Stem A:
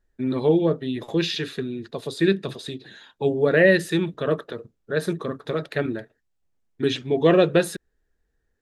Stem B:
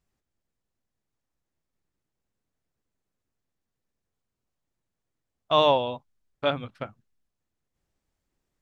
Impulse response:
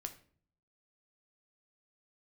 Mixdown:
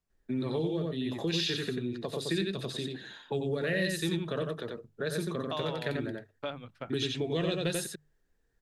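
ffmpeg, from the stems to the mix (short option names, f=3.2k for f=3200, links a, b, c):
-filter_complex "[0:a]adelay=100,volume=-2.5dB,asplit=2[a][b];[b]volume=-4dB[c];[1:a]alimiter=limit=-15.5dB:level=0:latency=1:release=335,volume=-6dB[d];[c]aecho=0:1:90:1[e];[a][d][e]amix=inputs=3:normalize=0,bandreject=f=50:t=h:w=6,bandreject=f=100:t=h:w=6,bandreject=f=150:t=h:w=6,acrossover=split=140|3000[f][g][h];[g]acompressor=threshold=-31dB:ratio=6[i];[f][i][h]amix=inputs=3:normalize=0,asoftclip=type=tanh:threshold=-14dB"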